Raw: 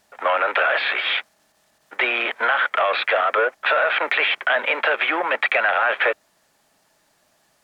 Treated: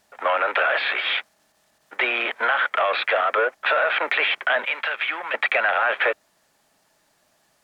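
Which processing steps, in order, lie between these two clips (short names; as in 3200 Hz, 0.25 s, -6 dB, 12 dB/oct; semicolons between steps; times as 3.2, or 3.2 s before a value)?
4.64–5.34 bell 390 Hz -13.5 dB 2.7 oct; gain -1.5 dB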